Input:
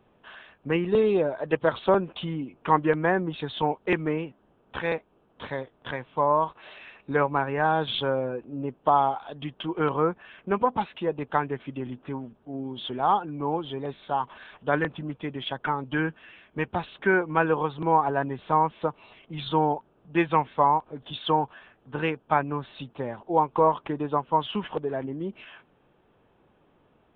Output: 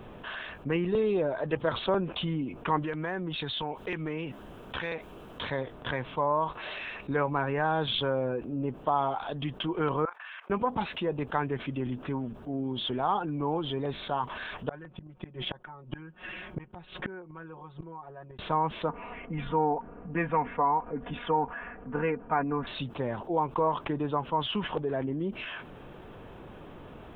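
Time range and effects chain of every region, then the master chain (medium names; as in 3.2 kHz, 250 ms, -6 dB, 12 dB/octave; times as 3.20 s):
2.82–5.49 s: treble shelf 2.2 kHz +9.5 dB + compression 2.5:1, threshold -38 dBFS
10.05–10.50 s: high-pass 1 kHz 24 dB/octave + tilt EQ -3 dB/octave + level held to a coarse grid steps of 19 dB
14.69–18.39 s: treble shelf 2.4 kHz -8.5 dB + comb 5.5 ms, depth 76% + inverted gate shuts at -25 dBFS, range -35 dB
18.89–22.67 s: steep low-pass 2.3 kHz + comb 4.2 ms, depth 67%
whole clip: bass shelf 80 Hz +7.5 dB; band-stop 820 Hz, Q 24; level flattener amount 50%; trim -7.5 dB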